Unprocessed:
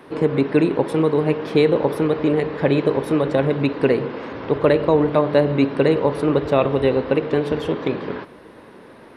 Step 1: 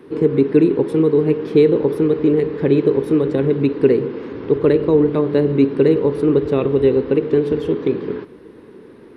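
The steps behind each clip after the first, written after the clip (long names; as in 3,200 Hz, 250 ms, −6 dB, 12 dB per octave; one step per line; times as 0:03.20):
low shelf with overshoot 510 Hz +6 dB, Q 3
level −5 dB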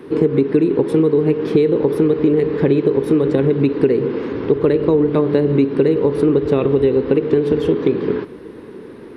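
downward compressor, threshold −17 dBFS, peak gain reduction 9.5 dB
level +6 dB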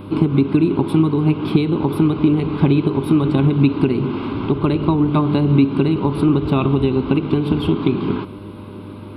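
phaser with its sweep stopped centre 1,800 Hz, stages 6
hum with harmonics 100 Hz, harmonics 6, −43 dBFS −5 dB per octave
level +6 dB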